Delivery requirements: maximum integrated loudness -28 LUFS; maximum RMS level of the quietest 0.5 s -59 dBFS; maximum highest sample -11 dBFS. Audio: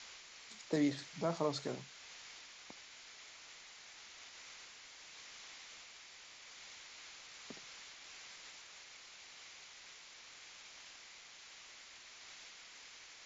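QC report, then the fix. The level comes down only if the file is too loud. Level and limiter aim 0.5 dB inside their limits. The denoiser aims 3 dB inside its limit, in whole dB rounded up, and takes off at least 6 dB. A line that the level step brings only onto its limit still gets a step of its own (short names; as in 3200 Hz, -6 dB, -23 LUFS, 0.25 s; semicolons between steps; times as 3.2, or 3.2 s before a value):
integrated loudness -46.5 LUFS: OK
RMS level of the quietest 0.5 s -56 dBFS: fail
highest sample -22.5 dBFS: OK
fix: denoiser 6 dB, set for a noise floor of -56 dBFS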